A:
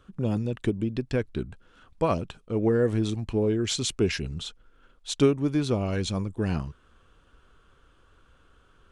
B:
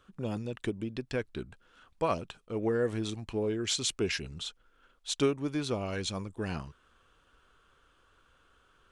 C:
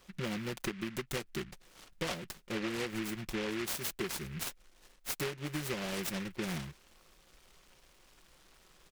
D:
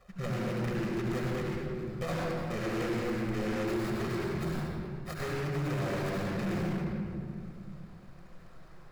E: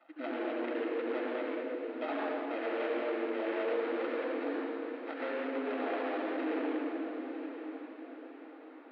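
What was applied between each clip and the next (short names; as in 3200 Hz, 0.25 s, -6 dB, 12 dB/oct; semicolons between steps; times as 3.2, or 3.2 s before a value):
low shelf 410 Hz -9 dB; gain -1.5 dB
comb 5.5 ms, depth 90%; compressor 10:1, threshold -33 dBFS, peak gain reduction 12.5 dB; noise-modulated delay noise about 1900 Hz, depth 0.22 ms
median filter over 15 samples; reverb RT60 2.1 s, pre-delay 70 ms, DRR -4.5 dB; soft clip -26.5 dBFS, distortion -14 dB
median filter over 9 samples; mistuned SSB +120 Hz 160–3600 Hz; diffused feedback echo 0.921 s, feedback 41%, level -10 dB; gain -1 dB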